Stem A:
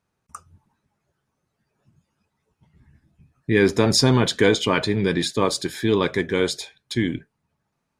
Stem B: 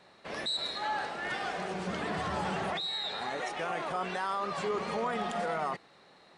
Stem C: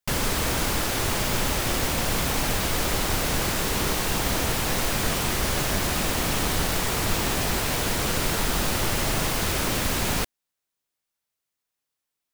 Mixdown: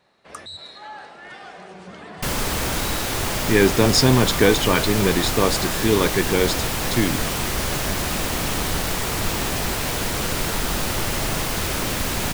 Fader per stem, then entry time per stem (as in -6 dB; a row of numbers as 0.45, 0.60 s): +1.0, -4.5, +1.0 dB; 0.00, 0.00, 2.15 s